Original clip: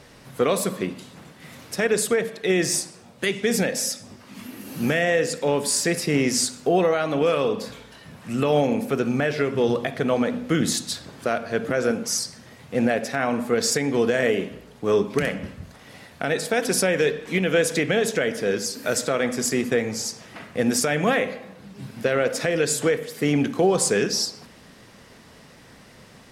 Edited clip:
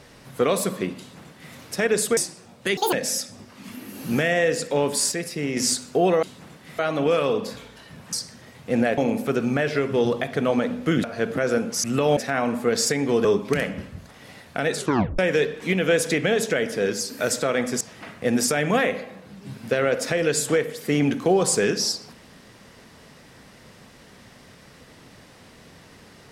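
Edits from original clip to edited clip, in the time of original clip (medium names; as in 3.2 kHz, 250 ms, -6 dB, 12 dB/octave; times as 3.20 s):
0.98–1.54 s: copy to 6.94 s
2.17–2.74 s: delete
3.34–3.64 s: speed 191%
5.83–6.28 s: gain -6 dB
8.28–8.61 s: swap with 12.17–13.02 s
10.67–11.37 s: delete
14.10–14.90 s: delete
16.41 s: tape stop 0.43 s
19.46–20.14 s: delete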